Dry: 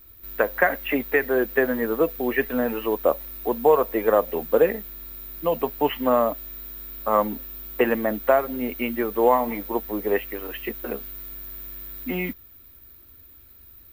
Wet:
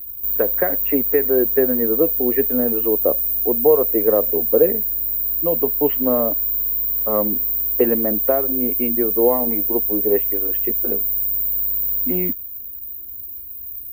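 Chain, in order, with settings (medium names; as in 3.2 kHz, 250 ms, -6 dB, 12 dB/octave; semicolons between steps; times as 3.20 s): FFT filter 170 Hz 0 dB, 420 Hz +3 dB, 980 Hz -11 dB, 10 kHz -14 dB, 15 kHz +15 dB; trim +2.5 dB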